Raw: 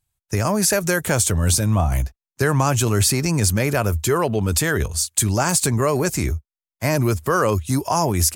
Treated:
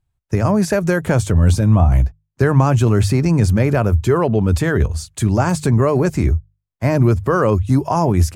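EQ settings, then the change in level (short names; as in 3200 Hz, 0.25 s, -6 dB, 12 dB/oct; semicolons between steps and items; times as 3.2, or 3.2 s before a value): LPF 1500 Hz 6 dB/oct; low shelf 310 Hz +5.5 dB; notches 50/100/150 Hz; +2.5 dB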